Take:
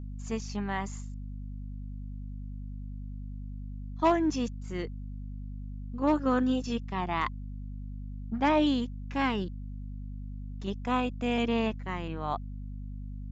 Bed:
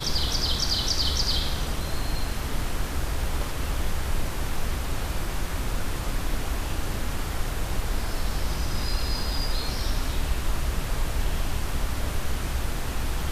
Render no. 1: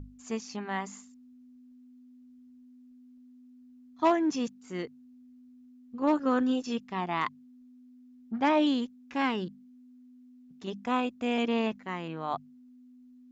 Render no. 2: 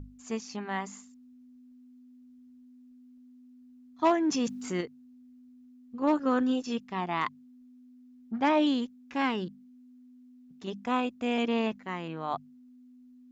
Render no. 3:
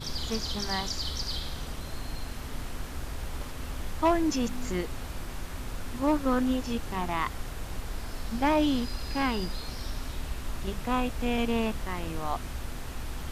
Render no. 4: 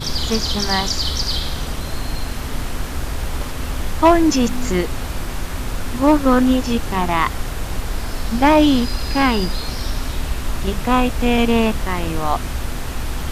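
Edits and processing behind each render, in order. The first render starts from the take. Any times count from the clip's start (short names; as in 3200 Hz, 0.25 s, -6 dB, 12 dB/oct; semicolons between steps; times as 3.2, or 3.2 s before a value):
notches 50/100/150/200 Hz
4.27–4.81 fast leveller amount 50%
add bed -8.5 dB
gain +12 dB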